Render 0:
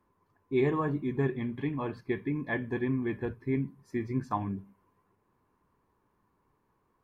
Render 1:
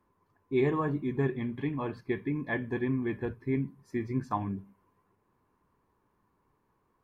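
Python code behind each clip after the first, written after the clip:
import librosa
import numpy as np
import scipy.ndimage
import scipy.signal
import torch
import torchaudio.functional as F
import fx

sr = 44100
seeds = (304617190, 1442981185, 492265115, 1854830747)

y = x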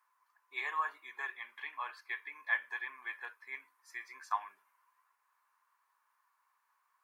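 y = scipy.signal.sosfilt(scipy.signal.butter(4, 1100.0, 'highpass', fs=sr, output='sos'), x)
y = fx.peak_eq(y, sr, hz=3200.0, db=-3.5, octaves=1.2)
y = F.gain(torch.from_numpy(y), 4.5).numpy()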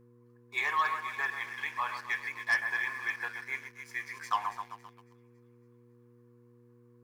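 y = fx.echo_split(x, sr, split_hz=2000.0, low_ms=130, high_ms=278, feedback_pct=52, wet_db=-9.0)
y = fx.leveller(y, sr, passes=2)
y = fx.dmg_buzz(y, sr, base_hz=120.0, harmonics=4, level_db=-60.0, tilt_db=-2, odd_only=False)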